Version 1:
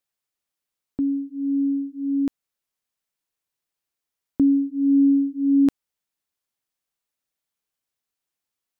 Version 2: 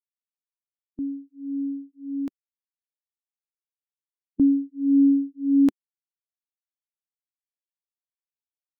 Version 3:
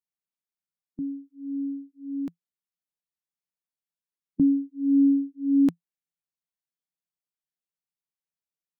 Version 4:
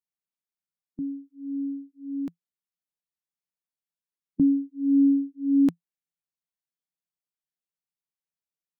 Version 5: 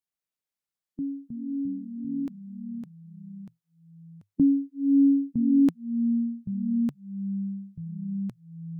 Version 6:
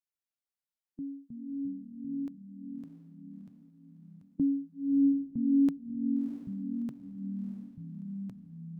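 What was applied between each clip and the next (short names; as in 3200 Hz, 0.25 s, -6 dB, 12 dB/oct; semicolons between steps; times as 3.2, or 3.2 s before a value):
per-bin expansion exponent 2
bell 170 Hz +13.5 dB 0.37 oct; gain -3 dB
nothing audible
echoes that change speed 0.127 s, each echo -3 st, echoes 3, each echo -6 dB
diffused feedback echo 0.65 s, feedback 41%, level -8 dB; gain -7.5 dB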